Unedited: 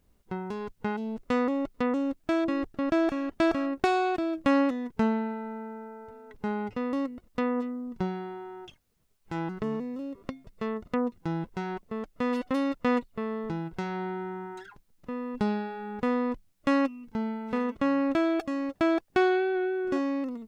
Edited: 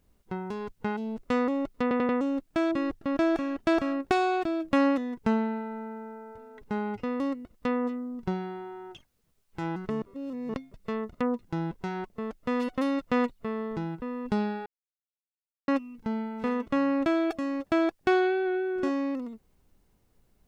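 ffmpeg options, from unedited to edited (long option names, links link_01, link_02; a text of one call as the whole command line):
ffmpeg -i in.wav -filter_complex "[0:a]asplit=9[link_01][link_02][link_03][link_04][link_05][link_06][link_07][link_08][link_09];[link_01]atrim=end=1.912[link_10];[link_02]atrim=start=1.818:end=1.912[link_11];[link_03]atrim=start=1.818:end=1.912[link_12];[link_04]atrim=start=1.818:end=9.752[link_13];[link_05]atrim=start=9.748:end=10.272,asetpts=PTS-STARTPTS,areverse[link_14];[link_06]atrim=start=10.268:end=13.752[link_15];[link_07]atrim=start=15.108:end=15.75,asetpts=PTS-STARTPTS,afade=type=out:start_time=0.638:duration=0.004:curve=hsin[link_16];[link_08]atrim=start=15.75:end=16.77,asetpts=PTS-STARTPTS,volume=0[link_17];[link_09]atrim=start=16.77,asetpts=PTS-STARTPTS,afade=type=in:duration=0.004:curve=hsin[link_18];[link_10][link_11]acrossfade=duration=0.004:curve1=hsin:curve2=hsin[link_19];[link_19][link_12]acrossfade=duration=0.004:curve1=hsin:curve2=hsin[link_20];[link_20][link_13]acrossfade=duration=0.004:curve1=hsin:curve2=hsin[link_21];[link_21][link_14]acrossfade=duration=0.004:curve1=hsin:curve2=hsin[link_22];[link_22][link_15]acrossfade=duration=0.004:curve1=hsin:curve2=hsin[link_23];[link_16][link_17][link_18]concat=n=3:v=0:a=1[link_24];[link_23][link_24]acrossfade=duration=0.004:curve1=hsin:curve2=hsin" out.wav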